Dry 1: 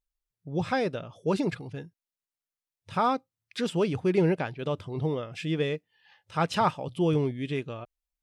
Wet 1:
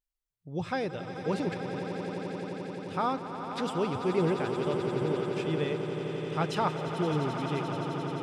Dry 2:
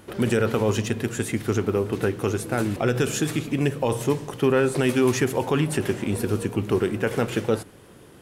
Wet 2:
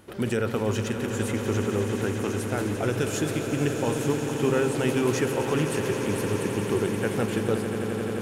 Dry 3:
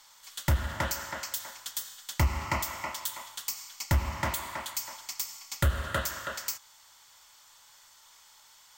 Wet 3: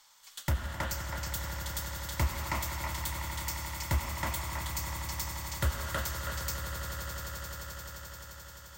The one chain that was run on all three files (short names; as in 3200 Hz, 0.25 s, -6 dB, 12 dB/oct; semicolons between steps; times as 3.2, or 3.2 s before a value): swelling echo 87 ms, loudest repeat 8, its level -12 dB; gain -4.5 dB